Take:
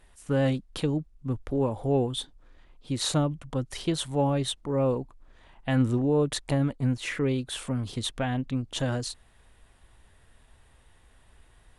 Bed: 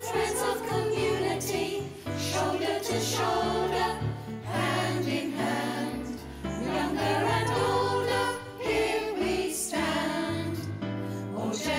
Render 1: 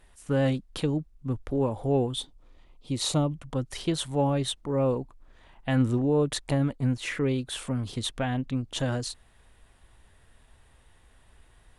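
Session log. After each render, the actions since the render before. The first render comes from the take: 2.18–3.32 s: peaking EQ 1.6 kHz -12.5 dB 0.3 oct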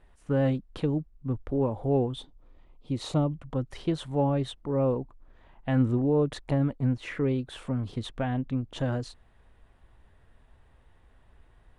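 low-pass 1.4 kHz 6 dB/octave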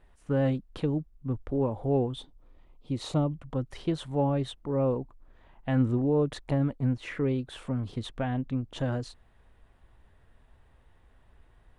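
trim -1 dB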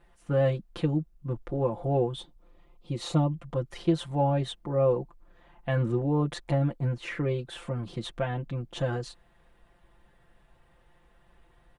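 bass shelf 80 Hz -7 dB; comb 5.8 ms, depth 89%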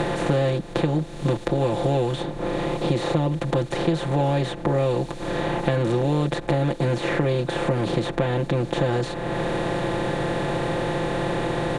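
spectral levelling over time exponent 0.4; three bands compressed up and down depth 100%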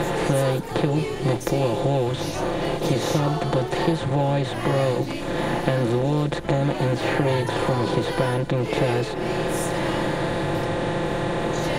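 add bed -2 dB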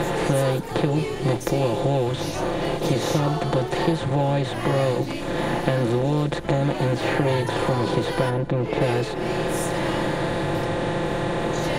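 8.29–8.80 s: treble shelf 2.1 kHz -> 4.2 kHz -12 dB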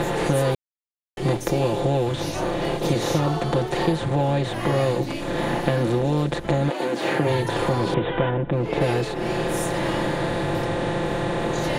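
0.55–1.17 s: mute; 6.69–7.27 s: high-pass 340 Hz -> 110 Hz 24 dB/octave; 7.94–8.53 s: steep low-pass 3.6 kHz 96 dB/octave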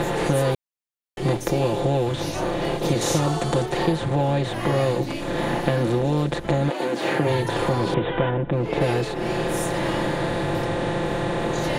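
3.01–3.66 s: peaking EQ 8 kHz +11 dB 0.96 oct

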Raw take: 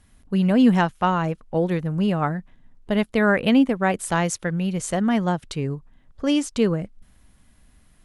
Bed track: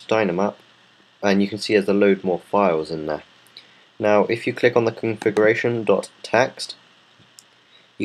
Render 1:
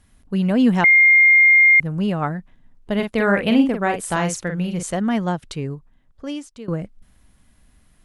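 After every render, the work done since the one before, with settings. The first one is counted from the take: 0.84–1.80 s: bleep 2.12 kHz -8.5 dBFS; 2.95–4.83 s: doubling 45 ms -6 dB; 5.51–6.68 s: fade out, to -20 dB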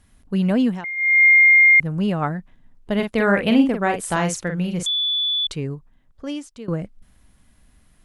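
0.53–1.25 s: dip -16.5 dB, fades 0.29 s; 4.86–5.47 s: bleep 3.46 kHz -18.5 dBFS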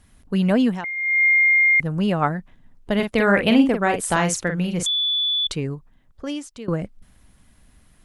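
dynamic bell 2.2 kHz, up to -5 dB, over -27 dBFS, Q 6.2; harmonic-percussive split percussive +4 dB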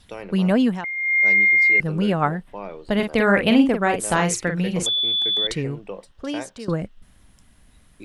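add bed track -17 dB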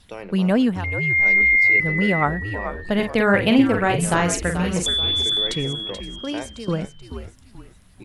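frequency-shifting echo 432 ms, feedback 40%, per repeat -98 Hz, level -9.5 dB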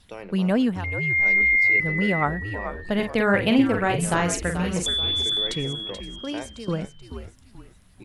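trim -3 dB

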